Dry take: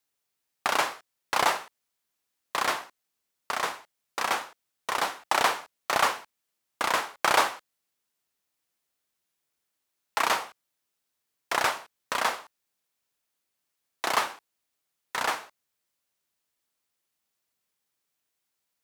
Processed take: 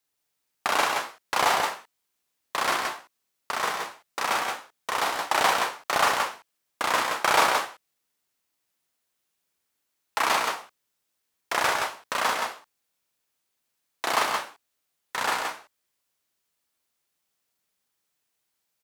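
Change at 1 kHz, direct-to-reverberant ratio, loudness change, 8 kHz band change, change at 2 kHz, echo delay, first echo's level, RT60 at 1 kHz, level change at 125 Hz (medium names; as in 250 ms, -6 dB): +3.0 dB, no reverb, +2.0 dB, +3.0 dB, +2.5 dB, 44 ms, -4.5 dB, no reverb, +3.0 dB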